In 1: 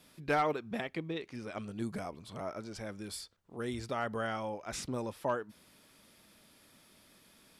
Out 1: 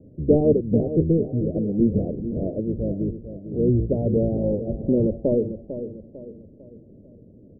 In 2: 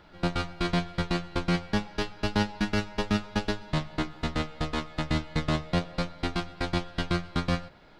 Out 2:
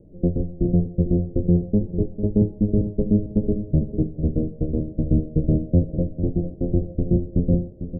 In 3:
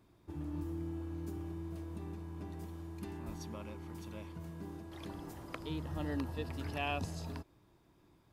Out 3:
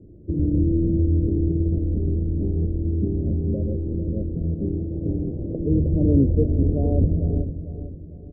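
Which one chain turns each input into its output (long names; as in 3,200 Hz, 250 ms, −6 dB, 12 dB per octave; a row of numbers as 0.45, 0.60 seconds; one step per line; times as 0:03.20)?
sub-octave generator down 1 octave, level −3 dB
Butterworth low-pass 540 Hz 48 dB per octave
on a send: repeating echo 449 ms, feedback 40%, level −11 dB
on the sum: loudness normalisation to −23 LKFS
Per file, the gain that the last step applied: +17.5, +8.0, +19.0 decibels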